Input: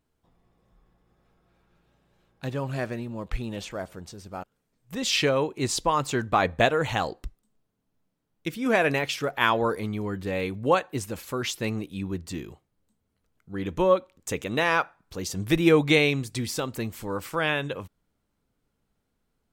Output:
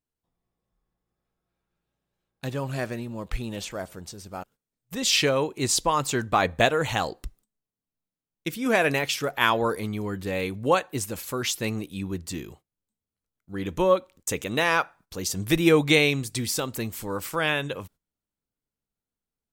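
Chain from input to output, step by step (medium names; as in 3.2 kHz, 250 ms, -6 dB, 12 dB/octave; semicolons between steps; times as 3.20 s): gate -51 dBFS, range -16 dB; treble shelf 5.1 kHz +8.5 dB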